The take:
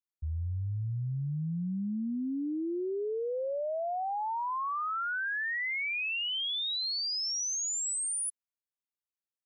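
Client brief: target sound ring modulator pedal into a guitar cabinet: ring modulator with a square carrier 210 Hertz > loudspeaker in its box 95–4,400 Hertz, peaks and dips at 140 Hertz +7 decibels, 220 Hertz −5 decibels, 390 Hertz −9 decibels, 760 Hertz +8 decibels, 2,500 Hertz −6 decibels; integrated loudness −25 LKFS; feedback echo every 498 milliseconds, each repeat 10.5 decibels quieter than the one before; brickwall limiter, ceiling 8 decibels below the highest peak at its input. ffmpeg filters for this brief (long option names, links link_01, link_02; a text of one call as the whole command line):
ffmpeg -i in.wav -af "alimiter=level_in=14dB:limit=-24dB:level=0:latency=1,volume=-14dB,aecho=1:1:498|996|1494:0.299|0.0896|0.0269,aeval=exprs='val(0)*sgn(sin(2*PI*210*n/s))':channel_layout=same,highpass=95,equalizer=frequency=140:width_type=q:width=4:gain=7,equalizer=frequency=220:width_type=q:width=4:gain=-5,equalizer=frequency=390:width_type=q:width=4:gain=-9,equalizer=frequency=760:width_type=q:width=4:gain=8,equalizer=frequency=2500:width_type=q:width=4:gain=-6,lowpass=frequency=4400:width=0.5412,lowpass=frequency=4400:width=1.3066,volume=16dB" out.wav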